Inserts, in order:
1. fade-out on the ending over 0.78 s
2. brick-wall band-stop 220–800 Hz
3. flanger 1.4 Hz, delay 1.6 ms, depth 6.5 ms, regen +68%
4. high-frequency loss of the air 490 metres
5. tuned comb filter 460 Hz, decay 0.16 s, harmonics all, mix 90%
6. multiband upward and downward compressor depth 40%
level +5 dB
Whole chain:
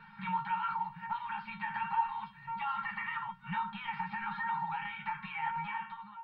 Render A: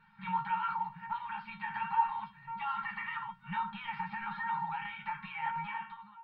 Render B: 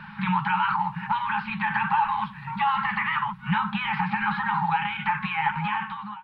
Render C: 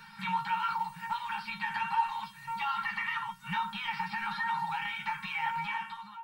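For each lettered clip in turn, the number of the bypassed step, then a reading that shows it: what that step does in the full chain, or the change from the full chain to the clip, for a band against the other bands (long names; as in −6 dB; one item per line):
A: 6, change in crest factor +3.0 dB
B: 5, 1 kHz band −5.0 dB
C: 4, 4 kHz band +8.5 dB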